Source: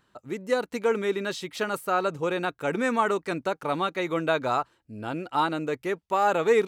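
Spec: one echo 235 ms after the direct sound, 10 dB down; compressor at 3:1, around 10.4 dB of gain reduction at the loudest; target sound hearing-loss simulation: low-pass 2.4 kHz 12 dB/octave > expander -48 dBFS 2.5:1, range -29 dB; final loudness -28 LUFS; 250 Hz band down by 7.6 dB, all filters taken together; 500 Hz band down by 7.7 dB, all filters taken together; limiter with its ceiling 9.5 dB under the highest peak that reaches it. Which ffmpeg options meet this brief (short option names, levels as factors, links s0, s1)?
-af "equalizer=f=250:t=o:g=-8,equalizer=f=500:t=o:g=-7,acompressor=threshold=0.0158:ratio=3,alimiter=level_in=2.51:limit=0.0631:level=0:latency=1,volume=0.398,lowpass=2400,aecho=1:1:235:0.316,agate=range=0.0355:threshold=0.00398:ratio=2.5,volume=5.31"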